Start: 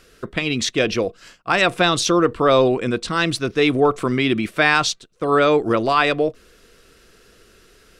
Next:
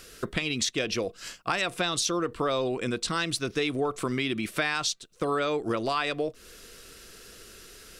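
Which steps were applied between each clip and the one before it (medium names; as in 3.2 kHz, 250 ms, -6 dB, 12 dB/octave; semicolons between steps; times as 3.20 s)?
treble shelf 3.8 kHz +10 dB; compression 4:1, threshold -27 dBFS, peak gain reduction 15 dB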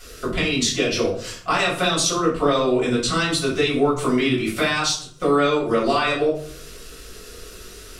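reverberation RT60 0.55 s, pre-delay 3 ms, DRR -9 dB; trim -3.5 dB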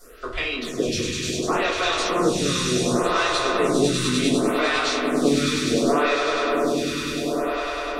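echo with a slow build-up 100 ms, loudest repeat 8, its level -9 dB; lamp-driven phase shifter 0.68 Hz; trim -1.5 dB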